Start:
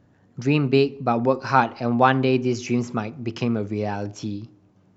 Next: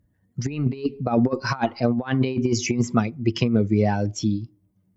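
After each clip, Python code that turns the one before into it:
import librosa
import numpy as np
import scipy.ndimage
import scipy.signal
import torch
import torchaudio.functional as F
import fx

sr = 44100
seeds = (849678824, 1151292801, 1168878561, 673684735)

y = fx.bin_expand(x, sr, power=1.5)
y = fx.over_compress(y, sr, threshold_db=-26.0, ratio=-0.5)
y = y * librosa.db_to_amplitude(6.0)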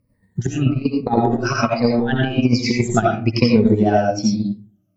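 y = fx.spec_ripple(x, sr, per_octave=0.93, drift_hz=-1.2, depth_db=18)
y = fx.rev_freeverb(y, sr, rt60_s=0.42, hf_ratio=0.5, predelay_ms=45, drr_db=-2.5)
y = fx.transient(y, sr, attack_db=5, sustain_db=-5)
y = y * librosa.db_to_amplitude(-1.5)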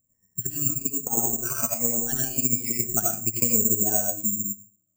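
y = (np.kron(scipy.signal.resample_poly(x, 1, 6), np.eye(6)[0]) * 6)[:len(x)]
y = y * librosa.db_to_amplitude(-15.5)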